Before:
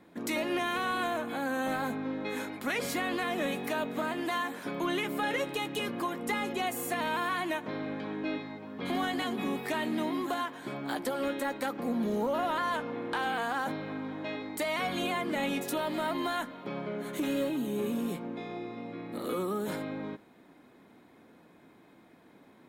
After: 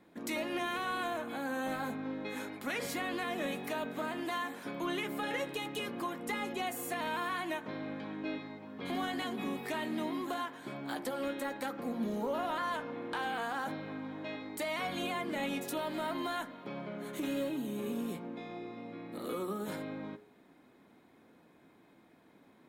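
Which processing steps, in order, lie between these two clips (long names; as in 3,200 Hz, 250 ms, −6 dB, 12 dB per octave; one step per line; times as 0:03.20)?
hum removal 59.71 Hz, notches 35
level −4 dB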